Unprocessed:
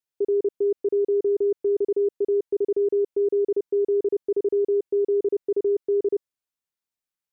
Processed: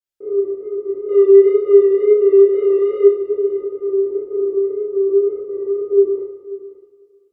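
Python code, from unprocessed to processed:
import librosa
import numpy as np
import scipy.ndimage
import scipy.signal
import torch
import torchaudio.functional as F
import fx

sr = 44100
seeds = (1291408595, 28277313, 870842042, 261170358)

p1 = fx.band_shelf(x, sr, hz=500.0, db=8.5, octaves=1.0, at=(1.05, 3.04), fade=0.02)
p2 = 10.0 ** (-19.0 / 20.0) * np.tanh(p1 / 10.0 ** (-19.0 / 20.0))
p3 = p1 + (p2 * 10.0 ** (-7.5 / 20.0))
p4 = fx.wow_flutter(p3, sr, seeds[0], rate_hz=2.1, depth_cents=65.0)
p5 = fx.chorus_voices(p4, sr, voices=6, hz=0.31, base_ms=29, depth_ms=1.8, mix_pct=55)
p6 = p5 + fx.echo_single(p5, sr, ms=535, db=-16.5, dry=0)
p7 = fx.rev_double_slope(p6, sr, seeds[1], early_s=0.73, late_s=2.7, knee_db=-18, drr_db=-8.5)
y = p7 * 10.0 ** (-7.5 / 20.0)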